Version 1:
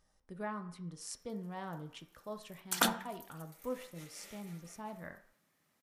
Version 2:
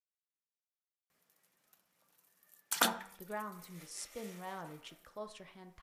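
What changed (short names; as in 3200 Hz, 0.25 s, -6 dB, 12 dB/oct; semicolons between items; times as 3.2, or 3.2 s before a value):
speech: entry +2.90 s; master: add bell 150 Hz -7.5 dB 1.5 oct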